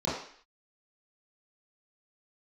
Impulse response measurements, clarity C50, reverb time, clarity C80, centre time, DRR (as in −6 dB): 3.0 dB, 0.55 s, 6.5 dB, 51 ms, −11.0 dB